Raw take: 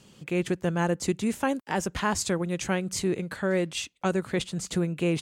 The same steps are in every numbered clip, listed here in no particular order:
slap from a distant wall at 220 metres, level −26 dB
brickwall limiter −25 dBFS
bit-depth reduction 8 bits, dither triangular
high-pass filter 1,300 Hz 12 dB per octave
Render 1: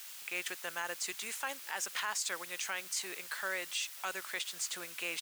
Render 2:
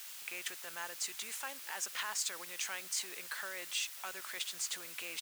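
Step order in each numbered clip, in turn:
slap from a distant wall, then bit-depth reduction, then high-pass filter, then brickwall limiter
slap from a distant wall, then brickwall limiter, then bit-depth reduction, then high-pass filter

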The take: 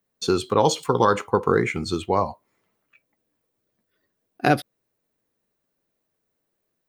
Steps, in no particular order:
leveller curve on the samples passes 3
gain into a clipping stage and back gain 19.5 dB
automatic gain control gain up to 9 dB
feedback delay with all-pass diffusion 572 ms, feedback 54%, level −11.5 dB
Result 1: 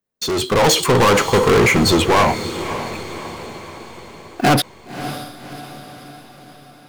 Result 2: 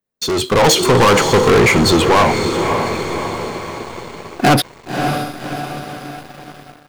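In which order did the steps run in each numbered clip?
gain into a clipping stage and back, then leveller curve on the samples, then automatic gain control, then feedback delay with all-pass diffusion
gain into a clipping stage and back, then feedback delay with all-pass diffusion, then leveller curve on the samples, then automatic gain control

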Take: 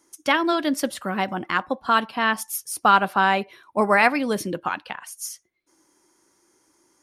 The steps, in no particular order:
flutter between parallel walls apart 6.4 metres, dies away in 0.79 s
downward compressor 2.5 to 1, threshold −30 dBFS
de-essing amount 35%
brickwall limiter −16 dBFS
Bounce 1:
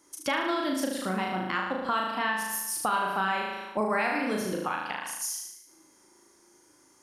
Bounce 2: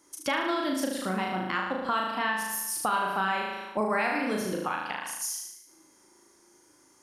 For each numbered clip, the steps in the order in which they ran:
de-essing, then flutter between parallel walls, then downward compressor, then brickwall limiter
flutter between parallel walls, then de-essing, then downward compressor, then brickwall limiter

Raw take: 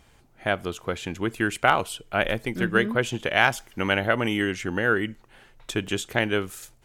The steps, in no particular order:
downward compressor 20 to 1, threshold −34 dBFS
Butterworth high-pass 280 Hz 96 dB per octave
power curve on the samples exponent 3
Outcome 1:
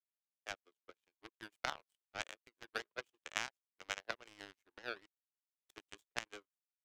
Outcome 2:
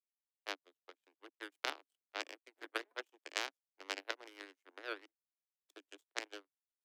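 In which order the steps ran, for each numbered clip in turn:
Butterworth high-pass, then power curve on the samples, then downward compressor
power curve on the samples, then Butterworth high-pass, then downward compressor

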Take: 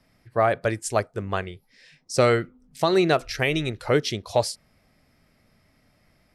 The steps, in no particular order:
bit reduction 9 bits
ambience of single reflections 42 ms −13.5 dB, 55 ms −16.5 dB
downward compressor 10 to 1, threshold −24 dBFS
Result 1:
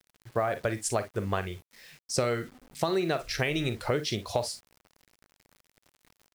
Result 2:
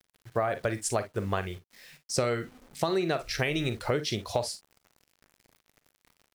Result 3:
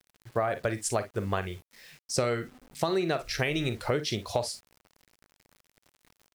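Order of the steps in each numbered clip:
ambience of single reflections, then downward compressor, then bit reduction
bit reduction, then ambience of single reflections, then downward compressor
ambience of single reflections, then bit reduction, then downward compressor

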